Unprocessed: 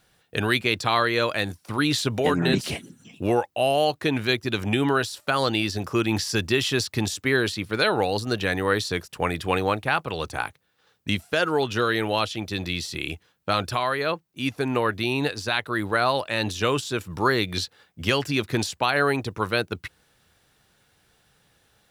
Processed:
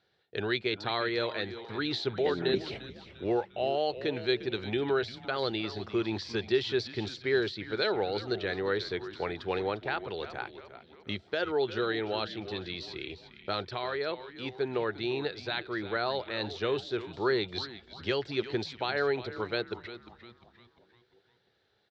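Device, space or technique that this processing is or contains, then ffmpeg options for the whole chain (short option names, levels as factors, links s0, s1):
frequency-shifting delay pedal into a guitar cabinet: -filter_complex "[0:a]asplit=6[s0][s1][s2][s3][s4][s5];[s1]adelay=350,afreqshift=-120,volume=0.224[s6];[s2]adelay=700,afreqshift=-240,volume=0.107[s7];[s3]adelay=1050,afreqshift=-360,volume=0.0513[s8];[s4]adelay=1400,afreqshift=-480,volume=0.0248[s9];[s5]adelay=1750,afreqshift=-600,volume=0.0119[s10];[s0][s6][s7][s8][s9][s10]amix=inputs=6:normalize=0,highpass=100,equalizer=f=160:t=q:w=4:g=-7,equalizer=f=260:t=q:w=4:g=-6,equalizer=f=390:t=q:w=4:g=8,equalizer=f=1100:t=q:w=4:g=-6,equalizer=f=2700:t=q:w=4:g=-5,equalizer=f=4100:t=q:w=4:g=5,lowpass=f=4400:w=0.5412,lowpass=f=4400:w=1.3066,volume=0.376"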